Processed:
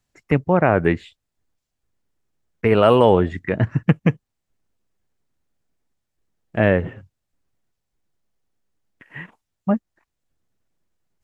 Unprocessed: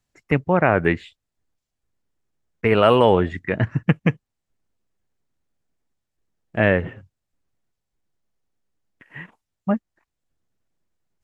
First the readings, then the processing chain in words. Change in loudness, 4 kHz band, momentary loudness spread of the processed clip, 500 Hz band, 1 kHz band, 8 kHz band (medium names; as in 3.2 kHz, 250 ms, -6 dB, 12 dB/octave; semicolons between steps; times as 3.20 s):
+1.0 dB, -2.0 dB, 19 LU, +1.5 dB, 0.0 dB, no reading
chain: dynamic bell 2.2 kHz, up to -5 dB, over -34 dBFS, Q 0.72; trim +2 dB